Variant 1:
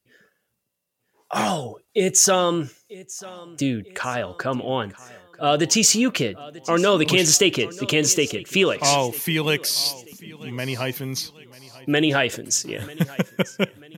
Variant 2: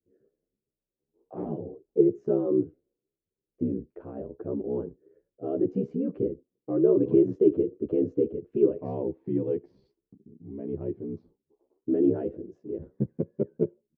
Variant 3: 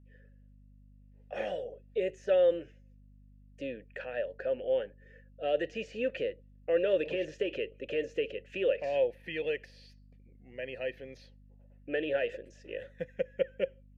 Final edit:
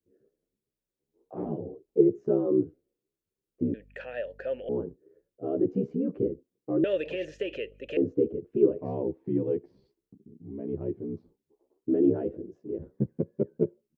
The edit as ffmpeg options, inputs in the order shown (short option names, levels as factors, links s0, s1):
-filter_complex "[2:a]asplit=2[s0][s1];[1:a]asplit=3[s2][s3][s4];[s2]atrim=end=3.742[s5];[s0]atrim=start=3.738:end=4.692[s6];[s3]atrim=start=4.688:end=6.842[s7];[s1]atrim=start=6.838:end=7.972[s8];[s4]atrim=start=7.968[s9];[s5][s6]acrossfade=d=0.004:c1=hsin:c2=hsin[s10];[s10][s7]acrossfade=d=0.004:c1=hsin:c2=hsin[s11];[s11][s8]acrossfade=d=0.004:c1=hsin:c2=hsin[s12];[s12][s9]acrossfade=d=0.004:c1=hsin:c2=hsin"